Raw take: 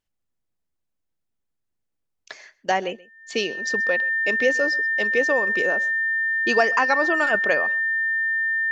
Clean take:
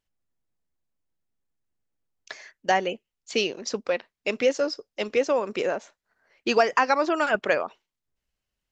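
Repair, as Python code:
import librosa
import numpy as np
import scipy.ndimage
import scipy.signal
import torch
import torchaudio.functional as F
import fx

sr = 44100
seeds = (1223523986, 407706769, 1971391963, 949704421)

y = fx.notch(x, sr, hz=1800.0, q=30.0)
y = fx.fix_echo_inverse(y, sr, delay_ms=130, level_db=-22.0)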